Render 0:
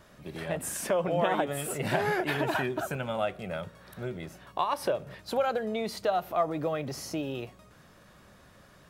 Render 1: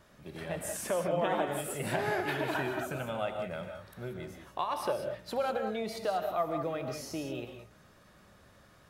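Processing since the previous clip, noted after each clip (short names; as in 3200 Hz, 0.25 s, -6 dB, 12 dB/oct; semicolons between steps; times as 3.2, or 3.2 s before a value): non-linear reverb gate 0.21 s rising, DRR 5 dB; gain -4.5 dB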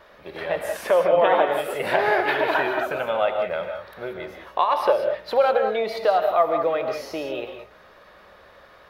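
graphic EQ 125/250/500/1000/2000/4000/8000 Hz -10/-4/+9/+6/+6/+6/-12 dB; gain +4.5 dB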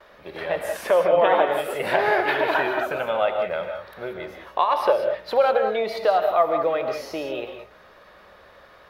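gate with hold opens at -44 dBFS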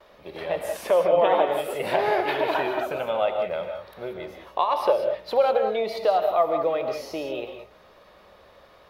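bell 1600 Hz -7.5 dB 0.72 oct; gain -1 dB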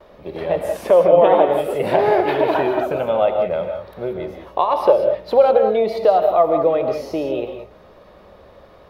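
tilt shelf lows +6 dB, about 810 Hz; gain +5.5 dB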